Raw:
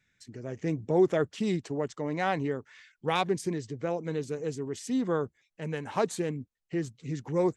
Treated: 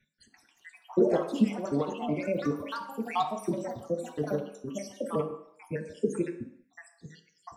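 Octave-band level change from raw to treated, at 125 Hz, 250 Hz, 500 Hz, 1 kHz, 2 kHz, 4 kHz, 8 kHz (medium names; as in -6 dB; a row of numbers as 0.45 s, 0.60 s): -4.0 dB, 0.0 dB, -1.5 dB, -1.0 dB, -5.5 dB, -4.5 dB, -5.0 dB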